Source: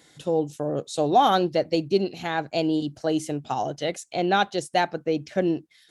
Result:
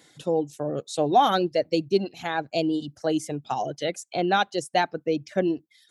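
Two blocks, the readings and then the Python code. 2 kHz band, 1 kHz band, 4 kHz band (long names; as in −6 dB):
−0.5 dB, −1.0 dB, −0.5 dB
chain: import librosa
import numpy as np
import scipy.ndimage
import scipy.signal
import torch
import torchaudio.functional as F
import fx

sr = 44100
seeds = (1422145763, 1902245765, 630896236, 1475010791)

y = fx.dereverb_blind(x, sr, rt60_s=0.95)
y = scipy.signal.sosfilt(scipy.signal.butter(2, 78.0, 'highpass', fs=sr, output='sos'), y)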